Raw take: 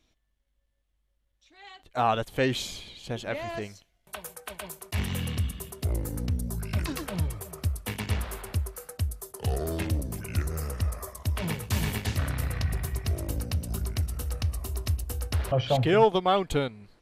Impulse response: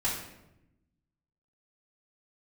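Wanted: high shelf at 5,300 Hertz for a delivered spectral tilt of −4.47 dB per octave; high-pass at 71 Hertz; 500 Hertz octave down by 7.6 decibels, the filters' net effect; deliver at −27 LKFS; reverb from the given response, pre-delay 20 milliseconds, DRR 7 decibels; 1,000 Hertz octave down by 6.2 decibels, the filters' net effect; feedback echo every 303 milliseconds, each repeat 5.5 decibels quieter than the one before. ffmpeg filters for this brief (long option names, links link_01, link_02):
-filter_complex "[0:a]highpass=71,equalizer=frequency=500:width_type=o:gain=-8.5,equalizer=frequency=1000:width_type=o:gain=-5,highshelf=frequency=5300:gain=3.5,aecho=1:1:303|606|909|1212|1515|1818|2121:0.531|0.281|0.149|0.079|0.0419|0.0222|0.0118,asplit=2[link_01][link_02];[1:a]atrim=start_sample=2205,adelay=20[link_03];[link_02][link_03]afir=irnorm=-1:irlink=0,volume=-14.5dB[link_04];[link_01][link_04]amix=inputs=2:normalize=0,volume=3dB"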